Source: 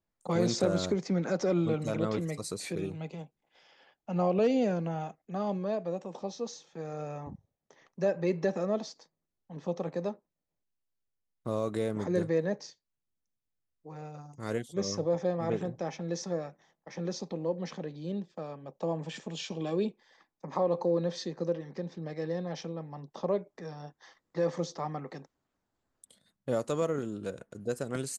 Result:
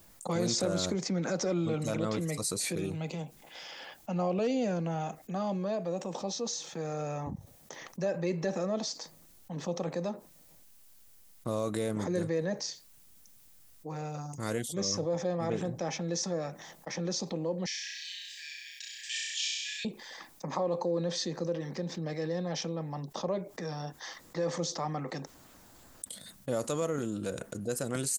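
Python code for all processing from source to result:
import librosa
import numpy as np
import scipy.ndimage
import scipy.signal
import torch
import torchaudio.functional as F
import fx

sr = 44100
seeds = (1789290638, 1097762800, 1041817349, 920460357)

y = fx.chain(x, sr, fx.brickwall_highpass(low_hz=1600.0),
    fx.room_flutter(wall_m=5.6, rt60_s=0.87), at=(17.66, 19.85))
y = fx.high_shelf(y, sr, hz=5500.0, db=12.0)
y = fx.notch(y, sr, hz=410.0, q=12.0)
y = fx.env_flatten(y, sr, amount_pct=50)
y = F.gain(torch.from_numpy(y), -4.5).numpy()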